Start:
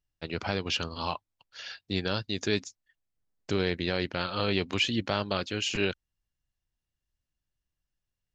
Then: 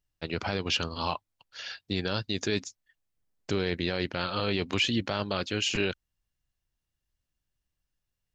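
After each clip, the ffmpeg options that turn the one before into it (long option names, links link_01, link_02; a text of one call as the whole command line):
ffmpeg -i in.wav -af "alimiter=limit=-17.5dB:level=0:latency=1:release=16,volume=2dB" out.wav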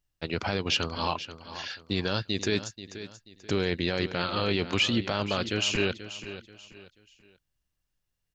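ffmpeg -i in.wav -af "aecho=1:1:484|968|1452:0.224|0.0716|0.0229,volume=1.5dB" out.wav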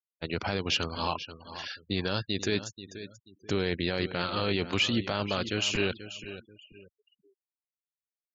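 ffmpeg -i in.wav -af "afftfilt=real='re*gte(hypot(re,im),0.00708)':imag='im*gte(hypot(re,im),0.00708)':win_size=1024:overlap=0.75,volume=-1.5dB" out.wav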